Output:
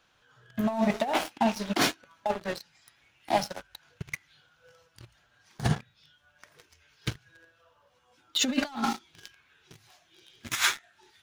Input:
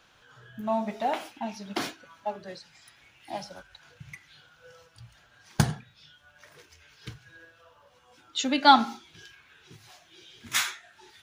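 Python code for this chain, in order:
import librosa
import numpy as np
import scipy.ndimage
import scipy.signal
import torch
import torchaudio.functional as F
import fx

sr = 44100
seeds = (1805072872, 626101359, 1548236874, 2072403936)

y = fx.leveller(x, sr, passes=3)
y = fx.over_compress(y, sr, threshold_db=-20.0, ratio=-0.5)
y = y * librosa.db_to_amplitude(-5.0)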